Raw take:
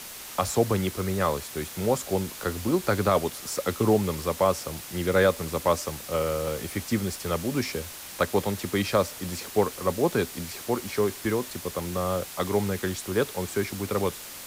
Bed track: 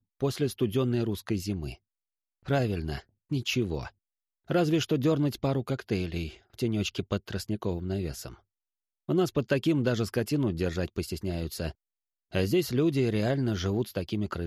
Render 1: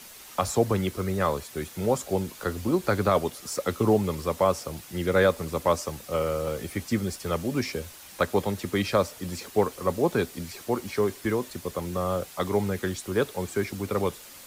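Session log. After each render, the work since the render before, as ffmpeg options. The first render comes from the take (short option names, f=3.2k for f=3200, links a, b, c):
-af "afftdn=nr=7:nf=-41"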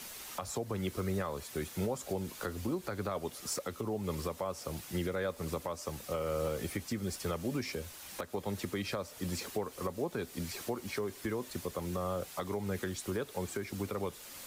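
-af "acompressor=threshold=-26dB:ratio=4,alimiter=level_in=1dB:limit=-24dB:level=0:latency=1:release=463,volume=-1dB"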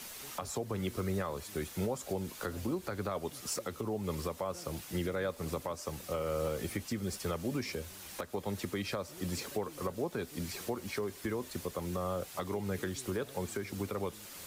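-filter_complex "[1:a]volume=-28dB[a];[0:a][a]amix=inputs=2:normalize=0"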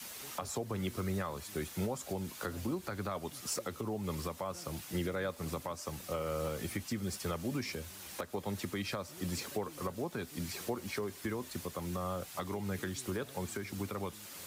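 -af "highpass=60,adynamicequalizer=threshold=0.00316:dfrequency=460:dqfactor=1.7:tfrequency=460:tqfactor=1.7:attack=5:release=100:ratio=0.375:range=3:mode=cutabove:tftype=bell"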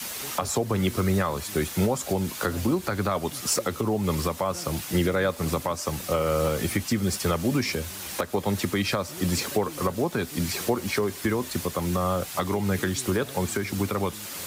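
-af "volume=12dB"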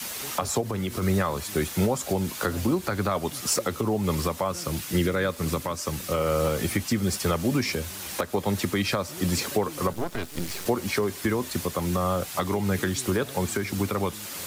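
-filter_complex "[0:a]asplit=3[a][b][c];[a]afade=t=out:st=0.6:d=0.02[d];[b]acompressor=threshold=-25dB:ratio=4:attack=3.2:release=140:knee=1:detection=peak,afade=t=in:st=0.6:d=0.02,afade=t=out:st=1.01:d=0.02[e];[c]afade=t=in:st=1.01:d=0.02[f];[d][e][f]amix=inputs=3:normalize=0,asettb=1/sr,asplit=3[g][h][i];[g]atrim=end=4.484[j];[h]atrim=start=4.48:end=6.18,asetpts=PTS-STARTPTS,afade=t=in:d=0.004:c=qsin,afade=t=out:st=1.696:d=0.004:c=qsin,equalizer=f=740:t=o:w=0.77:g=-5.5[k];[i]atrim=start=6.176[l];[j][k]acrossfade=d=0.004:c1=hsin:c2=qsin[m];[m][l]acrossfade=d=0.004:c1=qsin:c2=hsin,asettb=1/sr,asplit=3[n][o][p];[n]atrim=end=9.934[q];[o]atrim=start=9.93:end=10.66,asetpts=PTS-STARTPTS,afade=t=in:d=0.004:c=qsin,afade=t=out:st=0.726:d=0.004:c=qsin,aeval=exprs='max(val(0),0)':c=same[r];[p]atrim=start=10.656[s];[q][r]acrossfade=d=0.004:c1=hsin:c2=qsin[t];[t][s]acrossfade=d=0.004:c1=qsin:c2=hsin"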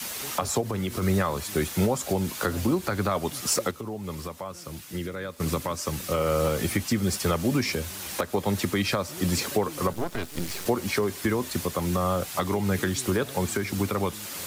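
-filter_complex "[0:a]asplit=3[a][b][c];[a]atrim=end=3.712[d];[b]atrim=start=3.708:end=5.402,asetpts=PTS-STARTPTS,volume=-9dB[e];[c]atrim=start=5.398[f];[d][e]acrossfade=d=0.004:c1=hsin:c2=hsin[g];[g][f]acrossfade=d=0.004:c1=hsin:c2=hsin"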